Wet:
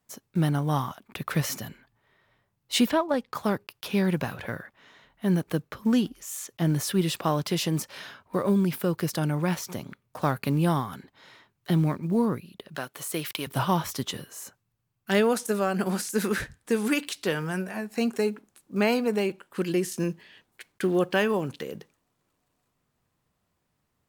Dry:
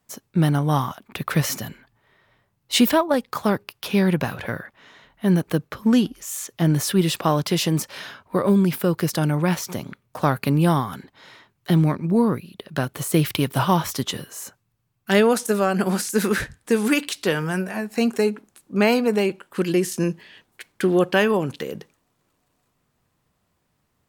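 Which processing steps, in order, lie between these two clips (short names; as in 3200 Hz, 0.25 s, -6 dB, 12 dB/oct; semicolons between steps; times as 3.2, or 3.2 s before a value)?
block floating point 7-bit; 2.85–3.34 high shelf 6600 Hz -> 9800 Hz -12 dB; 12.76–13.47 HPF 650 Hz 6 dB/oct; gain -5.5 dB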